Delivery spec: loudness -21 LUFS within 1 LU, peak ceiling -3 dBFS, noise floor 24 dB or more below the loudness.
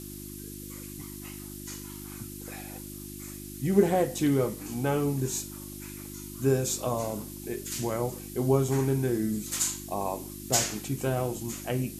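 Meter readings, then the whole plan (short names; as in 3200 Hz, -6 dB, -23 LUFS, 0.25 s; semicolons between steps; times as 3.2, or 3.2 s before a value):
hum 50 Hz; harmonics up to 350 Hz; hum level -41 dBFS; noise floor -41 dBFS; noise floor target -54 dBFS; loudness -29.5 LUFS; peak -9.0 dBFS; loudness target -21.0 LUFS
-> de-hum 50 Hz, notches 7; noise print and reduce 13 dB; gain +8.5 dB; limiter -3 dBFS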